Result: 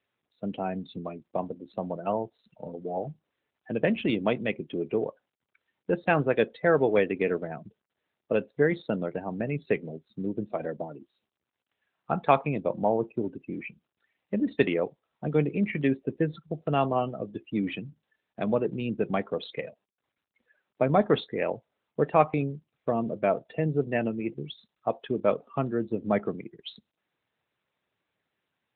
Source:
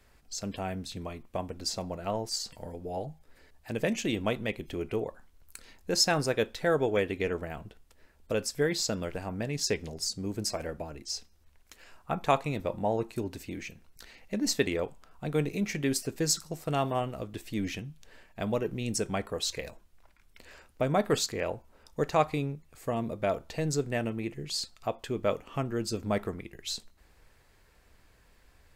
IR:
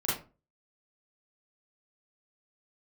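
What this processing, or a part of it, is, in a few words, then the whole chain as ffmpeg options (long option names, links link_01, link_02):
mobile call with aggressive noise cancelling: -af "highpass=frequency=130:width=0.5412,highpass=frequency=130:width=1.3066,afftdn=noise_reduction=29:noise_floor=-40,volume=4.5dB" -ar 8000 -c:a libopencore_amrnb -b:a 12200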